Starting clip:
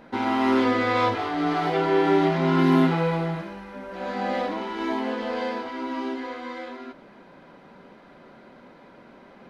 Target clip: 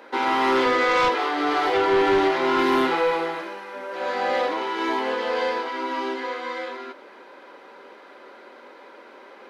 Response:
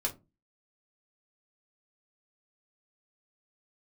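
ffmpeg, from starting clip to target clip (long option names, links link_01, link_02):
-af "highpass=frequency=360:width=0.5412,highpass=frequency=360:width=1.3066,equalizer=frequency=680:width_type=o:width=0.21:gain=-9,aeval=exprs='0.282*sin(PI/2*2*val(0)/0.282)':channel_layout=same,volume=-3.5dB"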